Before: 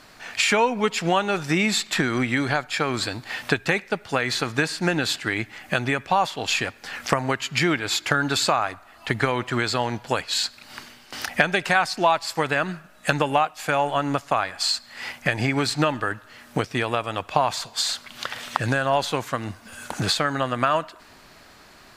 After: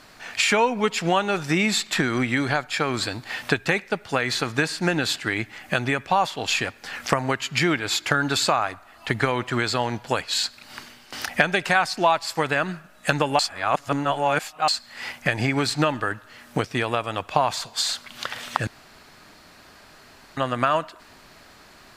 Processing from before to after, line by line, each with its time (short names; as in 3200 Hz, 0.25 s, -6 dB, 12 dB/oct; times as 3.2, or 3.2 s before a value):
13.39–14.68 reverse
18.67–20.37 room tone